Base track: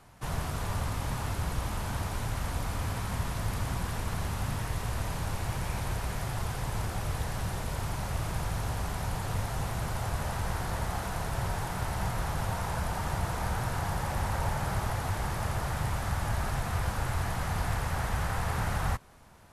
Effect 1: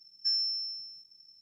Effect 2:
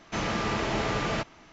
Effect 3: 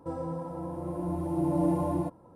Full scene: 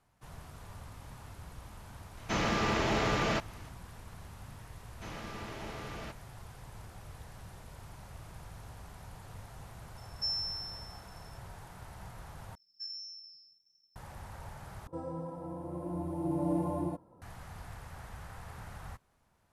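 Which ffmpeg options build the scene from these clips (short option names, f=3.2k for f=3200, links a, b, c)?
-filter_complex "[2:a]asplit=2[a][b];[1:a]asplit=2[c][d];[0:a]volume=-16dB[e];[a]volume=22dB,asoftclip=hard,volume=-22dB[f];[d]flanger=delay=3.6:depth=8.3:regen=51:speed=1.5:shape=sinusoidal[g];[e]asplit=3[h][i][j];[h]atrim=end=12.554[k];[g]atrim=end=1.41,asetpts=PTS-STARTPTS,volume=-9dB[l];[i]atrim=start=13.956:end=14.874[m];[3:a]atrim=end=2.35,asetpts=PTS-STARTPTS,volume=-5dB[n];[j]atrim=start=17.216[o];[f]atrim=end=1.52,asetpts=PTS-STARTPTS,volume=-1dB,afade=t=in:d=0.004:c=hsin,afade=t=out:st=1.516:d=0.004:c=hsin,adelay=2170[p];[b]atrim=end=1.52,asetpts=PTS-STARTPTS,volume=-15dB,afade=t=in:d=0.004:c=hsin,afade=t=out:st=1.516:d=0.004:c=hsin,adelay=215649S[q];[c]atrim=end=1.41,asetpts=PTS-STARTPTS,volume=-5dB,afade=t=in:d=0.004:c=hsin,afade=t=out:st=1.406:d=0.004:c=hsin,adelay=9970[r];[k][l]acrossfade=d=0.004:c1=hsin:c2=hsin[s];[s][m]acrossfade=d=0.004:c1=hsin:c2=hsin[t];[t][n]acrossfade=d=0.004:c1=hsin:c2=hsin[u];[u][o]acrossfade=d=0.004:c1=hsin:c2=hsin[v];[v][p][q][r]amix=inputs=4:normalize=0"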